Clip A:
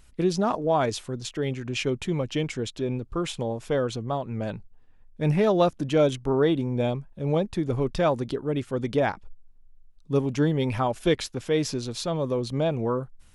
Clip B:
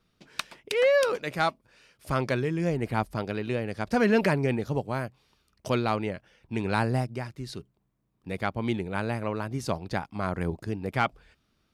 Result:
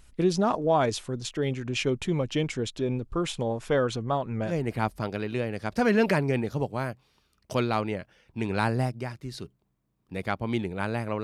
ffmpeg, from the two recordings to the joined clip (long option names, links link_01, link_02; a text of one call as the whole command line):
ffmpeg -i cue0.wav -i cue1.wav -filter_complex "[0:a]asettb=1/sr,asplit=3[link_01][link_02][link_03];[link_01]atrim=end=3.464[link_04];[link_02]atrim=start=3.46:end=4.56,asetpts=PTS-STARTPTS,afade=type=in:duration=0.004:curve=qsin,afade=type=out:start_time=1.096:duration=0.004:curve=qsin,equalizer=frequency=1500:width=0.96:gain=4.5[link_05];[link_03]atrim=start=4.556[link_06];[link_04][link_05]acrossfade=duration=0.004:curve1=hsin:curve2=qsin[link_07];[link_07][link_06]acrossfade=duration=0.004:curve1=qsin:curve2=hsin,apad=whole_dur=11.23,atrim=end=11.23,atrim=end=4.56,asetpts=PTS-STARTPTS[link_08];[1:a]atrim=start=2.59:end=9.38,asetpts=PTS-STARTPTS[link_09];[link_08][link_09]acrossfade=duration=0.12:curve1=tri:curve2=tri" out.wav